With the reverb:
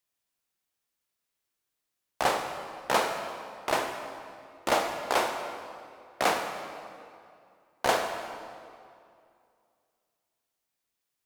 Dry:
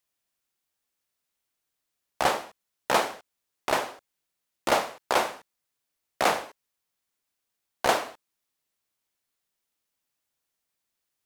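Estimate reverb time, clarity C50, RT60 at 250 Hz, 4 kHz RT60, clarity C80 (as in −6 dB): 2.4 s, 6.0 dB, 2.4 s, 1.8 s, 7.0 dB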